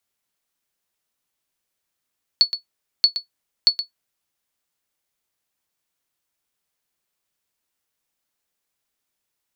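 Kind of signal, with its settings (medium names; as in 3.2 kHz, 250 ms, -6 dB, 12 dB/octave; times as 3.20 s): sonar ping 4.42 kHz, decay 0.12 s, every 0.63 s, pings 3, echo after 0.12 s, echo -11.5 dB -4.5 dBFS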